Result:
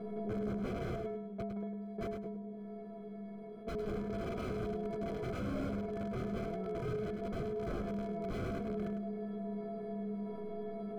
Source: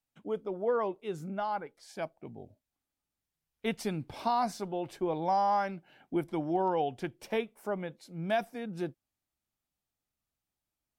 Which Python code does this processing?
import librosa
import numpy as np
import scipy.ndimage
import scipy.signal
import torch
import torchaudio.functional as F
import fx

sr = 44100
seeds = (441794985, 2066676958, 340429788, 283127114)

y = fx.bin_compress(x, sr, power=0.2)
y = fx.low_shelf(y, sr, hz=63.0, db=7.5)
y = fx.level_steps(y, sr, step_db=22, at=(1.07, 3.67))
y = fx.stiff_resonator(y, sr, f0_hz=200.0, decay_s=0.82, stiffness=0.03)
y = (np.mod(10.0 ** (34.0 / 20.0) * y + 1.0, 2.0) - 1.0) / 10.0 ** (34.0 / 20.0)
y = scipy.signal.lfilter(np.full(48, 1.0 / 48), 1.0, y)
y = fx.echo_feedback(y, sr, ms=103, feedback_pct=18, wet_db=-9)
y = fx.env_flatten(y, sr, amount_pct=50)
y = y * librosa.db_to_amplitude(7.5)